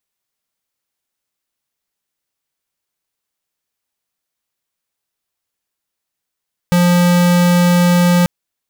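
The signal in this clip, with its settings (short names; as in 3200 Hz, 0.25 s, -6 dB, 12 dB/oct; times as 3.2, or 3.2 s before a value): tone square 176 Hz -11 dBFS 1.54 s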